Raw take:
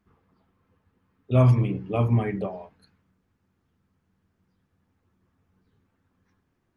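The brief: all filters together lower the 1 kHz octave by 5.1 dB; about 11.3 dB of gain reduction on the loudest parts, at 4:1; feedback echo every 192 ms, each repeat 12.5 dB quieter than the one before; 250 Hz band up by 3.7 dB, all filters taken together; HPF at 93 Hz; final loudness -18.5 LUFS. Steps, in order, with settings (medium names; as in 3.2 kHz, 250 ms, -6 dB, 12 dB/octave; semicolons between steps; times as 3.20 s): high-pass 93 Hz; peaking EQ 250 Hz +5 dB; peaking EQ 1 kHz -7.5 dB; compression 4:1, threshold -27 dBFS; feedback delay 192 ms, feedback 24%, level -12.5 dB; trim +13 dB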